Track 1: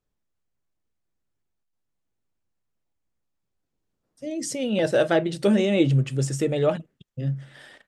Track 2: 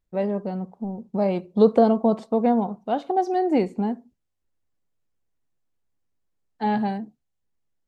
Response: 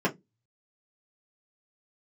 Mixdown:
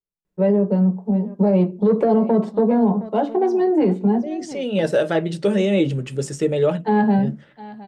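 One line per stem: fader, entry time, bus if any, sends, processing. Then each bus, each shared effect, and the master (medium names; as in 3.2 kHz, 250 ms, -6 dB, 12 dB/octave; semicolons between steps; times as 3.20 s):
0.0 dB, 0.00 s, send -19 dB, no echo send, gate -44 dBFS, range -18 dB; level-controlled noise filter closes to 1.1 kHz, open at -21 dBFS
-2.5 dB, 0.25 s, send -7.5 dB, echo send -11 dB, saturation -10 dBFS, distortion -18 dB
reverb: on, RT60 0.15 s, pre-delay 3 ms
echo: delay 715 ms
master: peak limiter -9 dBFS, peak gain reduction 11 dB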